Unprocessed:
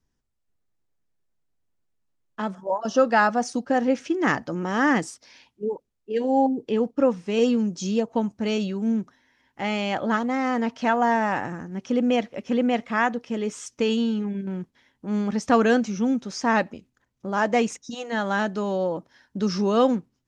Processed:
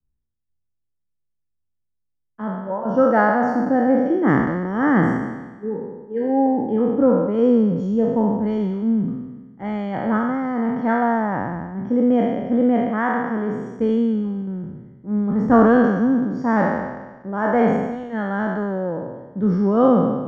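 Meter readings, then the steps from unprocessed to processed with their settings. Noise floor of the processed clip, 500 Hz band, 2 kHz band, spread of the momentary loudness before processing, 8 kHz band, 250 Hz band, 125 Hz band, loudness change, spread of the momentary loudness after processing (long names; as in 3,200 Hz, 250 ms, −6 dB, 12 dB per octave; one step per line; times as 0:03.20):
−74 dBFS, +4.0 dB, 0.0 dB, 11 LU, below −15 dB, +6.0 dB, +8.0 dB, +4.5 dB, 13 LU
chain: peak hold with a decay on every bin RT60 1.71 s
Savitzky-Golay smoothing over 41 samples
low-shelf EQ 360 Hz +11.5 dB
multiband upward and downward expander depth 40%
level −3.5 dB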